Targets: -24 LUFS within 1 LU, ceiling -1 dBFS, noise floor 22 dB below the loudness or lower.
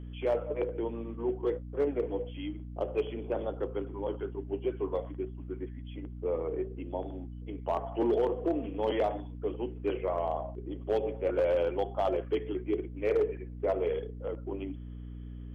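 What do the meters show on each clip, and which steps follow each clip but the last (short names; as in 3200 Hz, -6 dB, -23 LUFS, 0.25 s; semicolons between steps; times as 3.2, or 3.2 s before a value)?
clipped 0.4%; flat tops at -21.0 dBFS; hum 60 Hz; harmonics up to 300 Hz; hum level -40 dBFS; loudness -33.5 LUFS; peak -21.0 dBFS; loudness target -24.0 LUFS
-> clip repair -21 dBFS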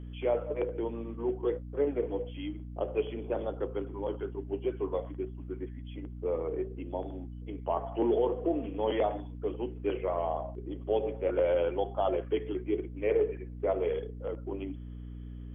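clipped 0.0%; hum 60 Hz; harmonics up to 300 Hz; hum level -40 dBFS
-> notches 60/120/180/240/300 Hz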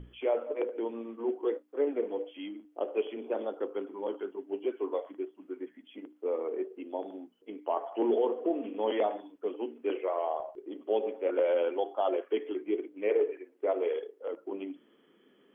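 hum none; loudness -33.5 LUFS; peak -17.5 dBFS; loudness target -24.0 LUFS
-> gain +9.5 dB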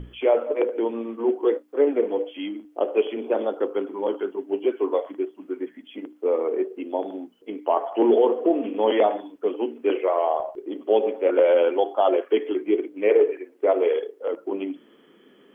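loudness -24.0 LUFS; peak -8.0 dBFS; noise floor -55 dBFS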